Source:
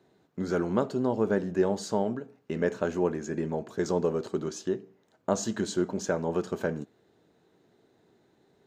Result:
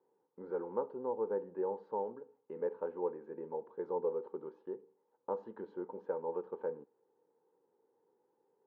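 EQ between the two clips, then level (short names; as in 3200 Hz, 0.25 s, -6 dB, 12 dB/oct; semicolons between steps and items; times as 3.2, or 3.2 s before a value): double band-pass 660 Hz, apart 0.83 oct; air absorption 380 m; -1.0 dB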